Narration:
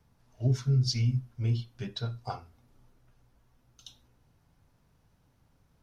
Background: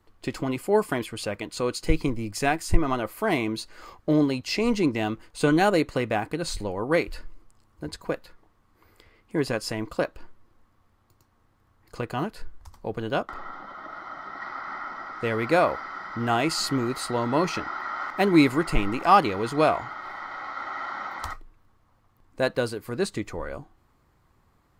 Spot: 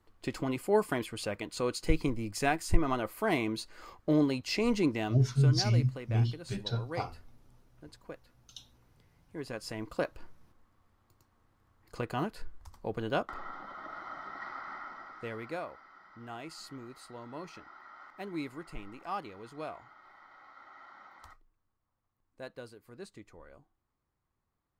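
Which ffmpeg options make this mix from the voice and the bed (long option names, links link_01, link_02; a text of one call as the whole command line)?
ffmpeg -i stem1.wav -i stem2.wav -filter_complex "[0:a]adelay=4700,volume=0.5dB[link_01];[1:a]volume=7dB,afade=type=out:start_time=4.87:duration=0.61:silence=0.266073,afade=type=in:start_time=9.35:duration=0.86:silence=0.251189,afade=type=out:start_time=14.14:duration=1.52:silence=0.16788[link_02];[link_01][link_02]amix=inputs=2:normalize=0" out.wav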